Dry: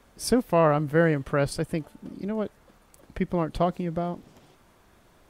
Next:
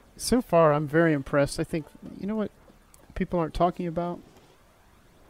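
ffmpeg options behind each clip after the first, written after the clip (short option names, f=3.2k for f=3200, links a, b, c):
-af "aphaser=in_gain=1:out_gain=1:delay=3.7:decay=0.32:speed=0.38:type=triangular"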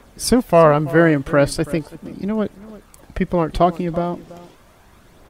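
-filter_complex "[0:a]asplit=2[a][b];[b]adelay=332.4,volume=-18dB,highshelf=f=4k:g=-7.48[c];[a][c]amix=inputs=2:normalize=0,volume=8dB"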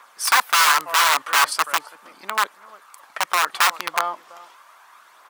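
-af "aeval=exprs='(mod(4.22*val(0)+1,2)-1)/4.22':c=same,highpass=f=1.1k:t=q:w=2.7"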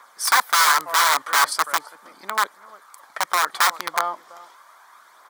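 -af "equalizer=f=2.7k:t=o:w=0.23:g=-13.5"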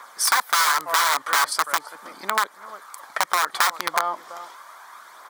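-af "acompressor=threshold=-25dB:ratio=3,volume=6dB"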